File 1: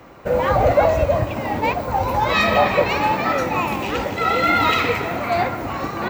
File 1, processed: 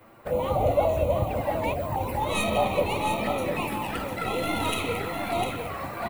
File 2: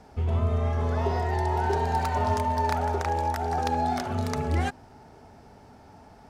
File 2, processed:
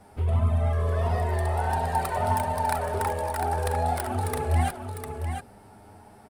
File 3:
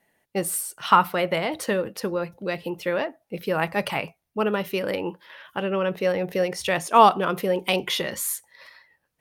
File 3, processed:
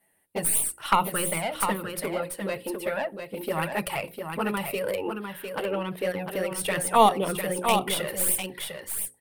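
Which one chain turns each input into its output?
tracing distortion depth 0.065 ms; resonant high shelf 7.7 kHz +7 dB, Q 3; touch-sensitive flanger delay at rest 10.8 ms, full sweep at -16.5 dBFS; hum notches 60/120/180/240/300/360/420/480/540 Hz; on a send: delay 702 ms -6.5 dB; on the sum: normalise loudness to -27 LUFS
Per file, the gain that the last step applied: -5.5 dB, +3.0 dB, 0.0 dB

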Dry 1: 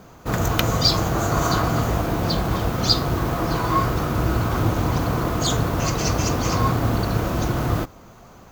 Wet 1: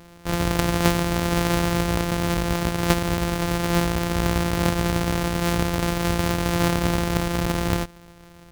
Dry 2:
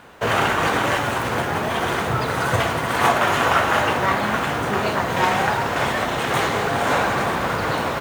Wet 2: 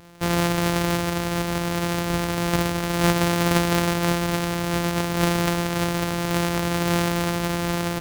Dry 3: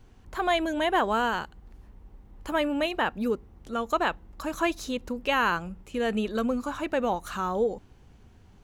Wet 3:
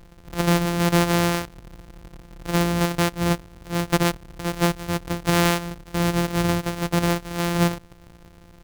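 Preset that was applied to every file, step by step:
sorted samples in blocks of 256 samples; normalise loudness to -23 LUFS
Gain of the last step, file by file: -1.5 dB, -2.0 dB, +5.5 dB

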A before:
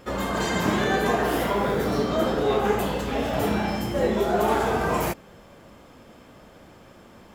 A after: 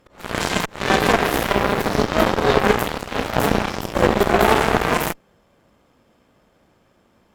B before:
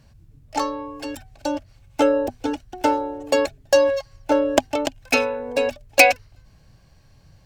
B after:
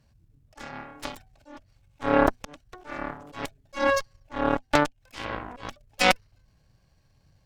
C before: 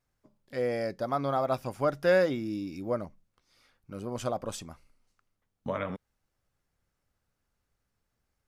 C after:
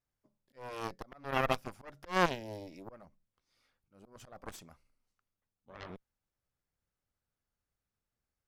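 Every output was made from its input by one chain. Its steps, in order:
slow attack 248 ms; Chebyshev shaper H 3 -39 dB, 4 -14 dB, 7 -16 dB, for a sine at -9.5 dBFS; trim +7 dB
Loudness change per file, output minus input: +5.0 LU, -5.5 LU, -4.5 LU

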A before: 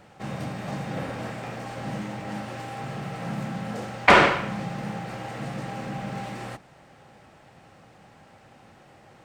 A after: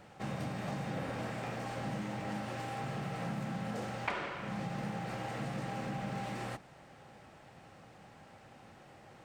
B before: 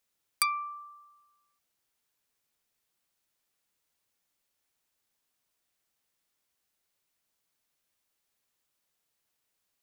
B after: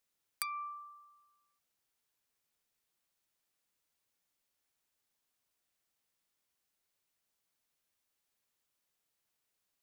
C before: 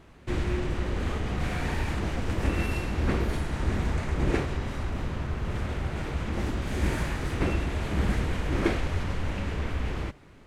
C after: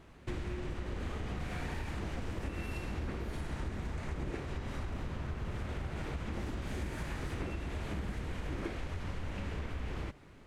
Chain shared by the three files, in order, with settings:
compression 20:1, threshold -30 dBFS; trim -3.5 dB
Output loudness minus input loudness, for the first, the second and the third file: -12.0 LU, -10.0 LU, -10.0 LU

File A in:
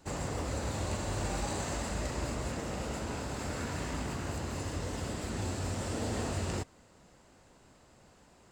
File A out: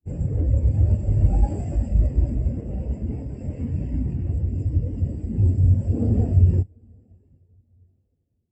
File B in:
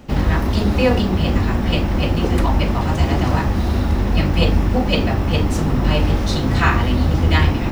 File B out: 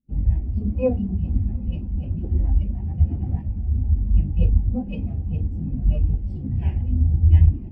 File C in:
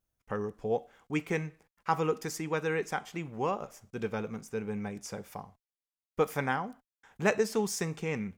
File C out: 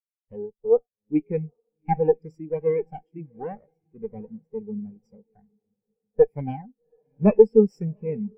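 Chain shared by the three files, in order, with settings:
comb filter that takes the minimum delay 0.38 ms; dynamic bell 780 Hz, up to +4 dB, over -46 dBFS, Q 3.7; in parallel at -6.5 dB: integer overflow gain 17 dB; on the sum: echo that smears into a reverb 785 ms, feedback 54%, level -14 dB; spectral contrast expander 2.5:1; normalise loudness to -23 LUFS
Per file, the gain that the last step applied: +13.0 dB, -1.5 dB, +11.0 dB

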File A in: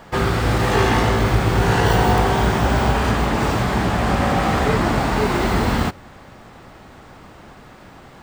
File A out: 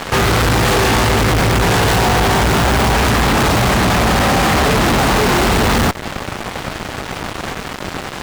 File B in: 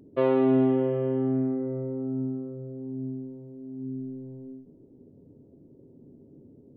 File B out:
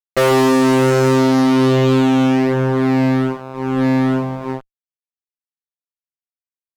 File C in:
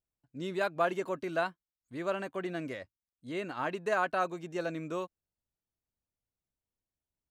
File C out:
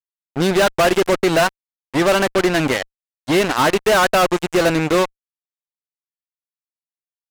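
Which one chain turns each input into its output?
in parallel at -0.5 dB: compression 4:1, threshold -27 dBFS; on the sum: fuzz box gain 34 dB, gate -35 dBFS; peak normalisation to -9 dBFS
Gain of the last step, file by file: +1.0 dB, +2.5 dB, +2.5 dB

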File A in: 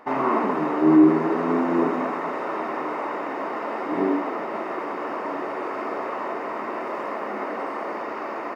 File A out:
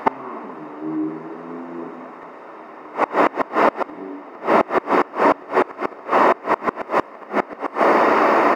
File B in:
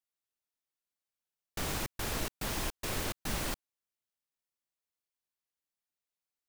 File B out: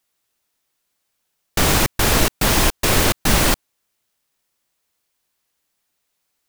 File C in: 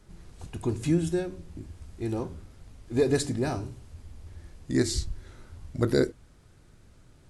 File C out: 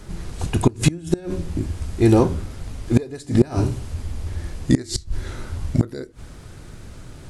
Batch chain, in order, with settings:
inverted gate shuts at -19 dBFS, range -26 dB; peak normalisation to -2 dBFS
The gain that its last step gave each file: +15.5 dB, +19.0 dB, +16.5 dB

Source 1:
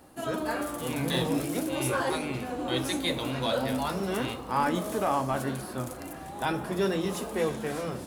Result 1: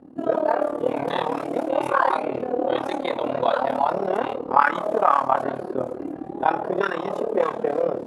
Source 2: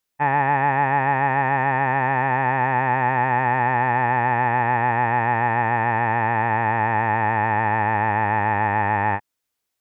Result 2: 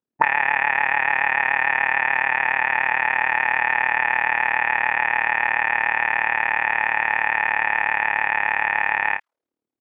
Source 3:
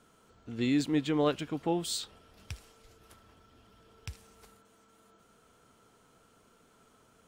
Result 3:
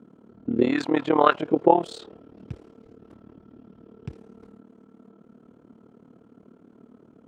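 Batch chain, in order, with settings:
AM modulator 37 Hz, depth 80%; auto-wah 240–2500 Hz, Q 2.1, up, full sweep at -22.5 dBFS; peak normalisation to -1.5 dBFS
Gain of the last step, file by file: +17.5 dB, +14.5 dB, +23.0 dB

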